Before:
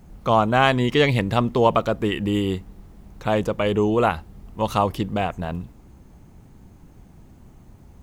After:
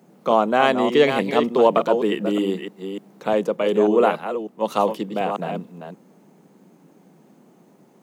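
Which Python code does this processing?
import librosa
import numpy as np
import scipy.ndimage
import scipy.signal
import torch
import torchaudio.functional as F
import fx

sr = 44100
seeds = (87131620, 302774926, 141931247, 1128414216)

y = fx.reverse_delay(x, sr, ms=298, wet_db=-7.0)
y = scipy.signal.sosfilt(scipy.signal.butter(8, 160.0, 'highpass', fs=sr, output='sos'), y)
y = fx.peak_eq(y, sr, hz=470.0, db=6.5, octaves=1.2)
y = fx.band_widen(y, sr, depth_pct=40, at=(3.33, 5.21))
y = y * 10.0 ** (-2.5 / 20.0)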